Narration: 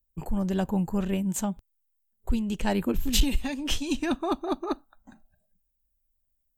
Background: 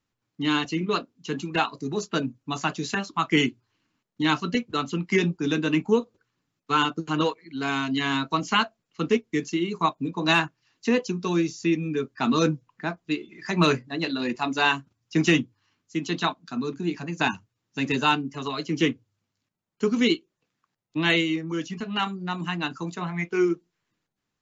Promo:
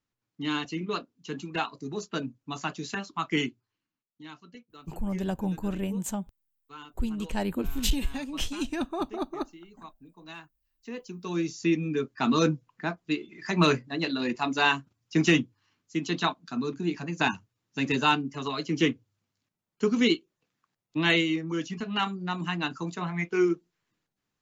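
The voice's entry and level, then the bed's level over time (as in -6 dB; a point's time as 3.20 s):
4.70 s, -3.5 dB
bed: 3.39 s -6 dB
4.33 s -23.5 dB
10.63 s -23.5 dB
11.56 s -1.5 dB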